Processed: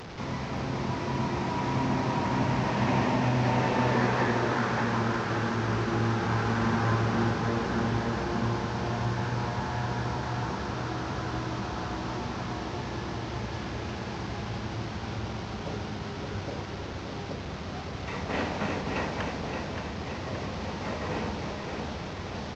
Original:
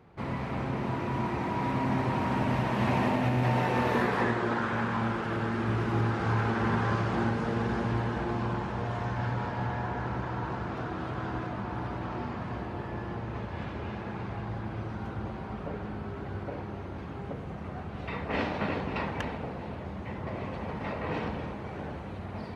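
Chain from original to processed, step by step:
linear delta modulator 32 kbit/s, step −35.5 dBFS
on a send: repeating echo 573 ms, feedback 54%, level −6 dB

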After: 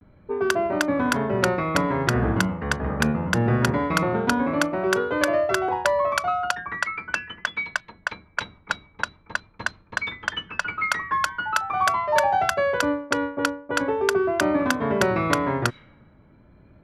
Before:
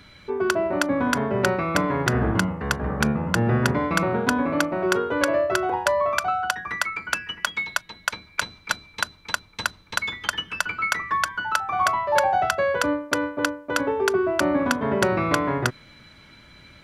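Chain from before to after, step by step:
low-pass that shuts in the quiet parts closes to 630 Hz, open at −18 dBFS
pitch vibrato 0.43 Hz 51 cents

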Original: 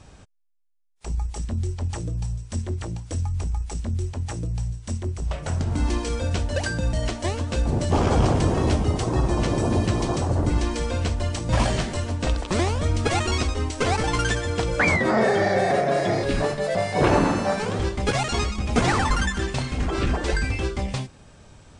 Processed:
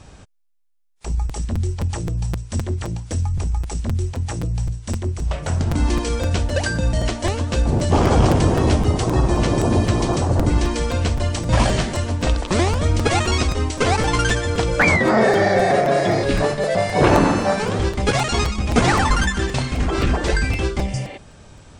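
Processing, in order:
healed spectral selection 0:20.94–0:21.15, 230–4,600 Hz before
regular buffer underruns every 0.26 s, samples 256, repeat, from 0:00.77
level +4.5 dB

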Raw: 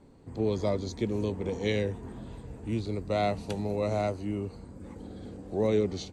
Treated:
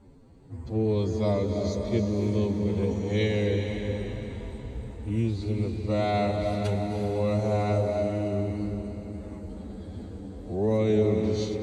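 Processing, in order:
low-shelf EQ 140 Hz +8.5 dB
phase-vocoder stretch with locked phases 1.9×
convolution reverb RT60 3.4 s, pre-delay 216 ms, DRR 3.5 dB

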